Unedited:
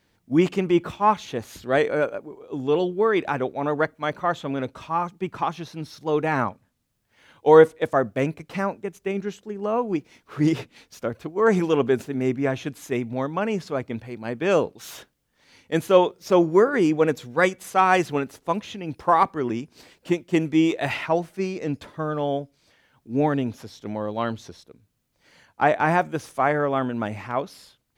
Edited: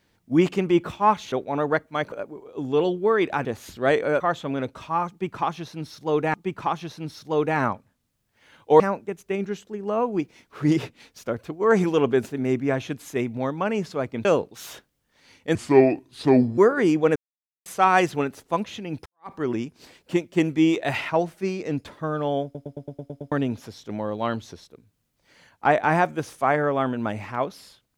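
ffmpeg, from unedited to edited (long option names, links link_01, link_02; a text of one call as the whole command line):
ffmpeg -i in.wav -filter_complex "[0:a]asplit=21[link_01][link_02][link_03][link_04][link_05][link_06][link_07][link_08][link_09][link_10][link_11][link_12][link_13][link_14][link_15][link_16][link_17][link_18][link_19][link_20][link_21];[link_01]atrim=end=1.322[link_22];[link_02]atrim=start=3.398:end=4.202[link_23];[link_03]atrim=start=2.068:end=3.402[link_24];[link_04]atrim=start=1.318:end=2.072[link_25];[link_05]atrim=start=4.198:end=6.342[link_26];[link_06]atrim=start=5.098:end=7.562[link_27];[link_07]atrim=start=8.558:end=14.012[link_28];[link_08]atrim=start=14.488:end=15.794[link_29];[link_09]atrim=start=15.79:end=16.54,asetpts=PTS-STARTPTS,asetrate=32193,aresample=44100,atrim=end_sample=45308,asetpts=PTS-STARTPTS[link_30];[link_10]atrim=start=16.536:end=17.12,asetpts=PTS-STARTPTS,afade=type=out:start_time=0.58:duration=0.004:curve=hsin[link_31];[link_11]atrim=start=17.12:end=17.62,asetpts=PTS-STARTPTS,volume=0[link_32];[link_12]atrim=start=17.62:end=19.02,asetpts=PTS-STARTPTS,afade=type=in:duration=0.004:curve=hsin,afade=type=out:start_time=1.396:duration=0.004:curve=hsin[link_33];[link_13]atrim=start=19.02:end=22.512,asetpts=PTS-STARTPTS,afade=type=in:duration=0.26:curve=exp[link_34];[link_14]atrim=start=22.398:end=22.512[link_35];[link_15]atrim=start=22.398:end=22.512[link_36];[link_16]atrim=start=22.398:end=22.512[link_37];[link_17]atrim=start=22.398:end=22.512[link_38];[link_18]atrim=start=22.398:end=22.512[link_39];[link_19]atrim=start=22.398:end=22.512[link_40];[link_20]atrim=start=22.398:end=22.512[link_41];[link_21]atrim=start=23.278[link_42];[link_22][link_23]acrossfade=duration=0.004:curve1=hsin:curve2=hsin[link_43];[link_43][link_24]acrossfade=duration=0.004:curve1=hsin:curve2=hsin[link_44];[link_44][link_25]acrossfade=duration=0.004:curve1=hsin:curve2=hsin[link_45];[link_45][link_26]acrossfade=duration=0.004:curve1=hsin:curve2=hsin[link_46];[link_46][link_27]acrossfade=duration=0.004:curve1=hsin:curve2=hsin[link_47];[link_47][link_28]acrossfade=duration=0.004:curve1=hsin:curve2=hsin[link_48];[link_48][link_29]acrossfade=duration=0.004:curve1=hsin:curve2=hsin[link_49];[link_49][link_30]acrossfade=duration=0.004:curve1=hsin:curve2=hsin[link_50];[link_31][link_32][link_33][link_34]concat=n=4:v=0:a=1[link_51];[link_50][link_51]acrossfade=duration=0.004:curve1=hsin:curve2=hsin[link_52];[link_52][link_35]acrossfade=duration=0.004:curve1=hsin:curve2=hsin[link_53];[link_53][link_36]acrossfade=duration=0.004:curve1=hsin:curve2=hsin[link_54];[link_54][link_37]acrossfade=duration=0.004:curve1=hsin:curve2=hsin[link_55];[link_55][link_38]acrossfade=duration=0.004:curve1=hsin:curve2=hsin[link_56];[link_56][link_39]acrossfade=duration=0.004:curve1=hsin:curve2=hsin[link_57];[link_57][link_40]acrossfade=duration=0.004:curve1=hsin:curve2=hsin[link_58];[link_58][link_41]acrossfade=duration=0.004:curve1=hsin:curve2=hsin[link_59];[link_59][link_42]acrossfade=duration=0.004:curve1=hsin:curve2=hsin" out.wav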